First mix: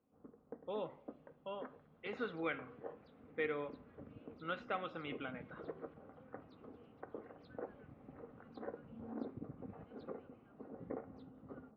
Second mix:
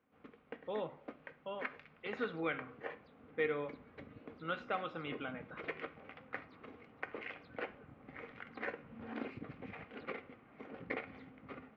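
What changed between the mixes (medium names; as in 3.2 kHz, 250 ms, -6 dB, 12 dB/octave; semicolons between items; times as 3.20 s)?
speech: send +10.0 dB; first sound: remove Gaussian low-pass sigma 8.5 samples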